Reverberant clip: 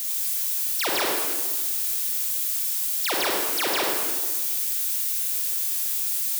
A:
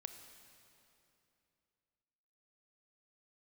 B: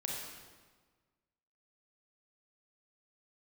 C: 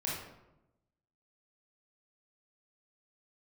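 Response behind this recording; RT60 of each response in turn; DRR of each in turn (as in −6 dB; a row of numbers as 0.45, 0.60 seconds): B; 2.9, 1.5, 0.95 seconds; 7.0, −2.0, −5.5 decibels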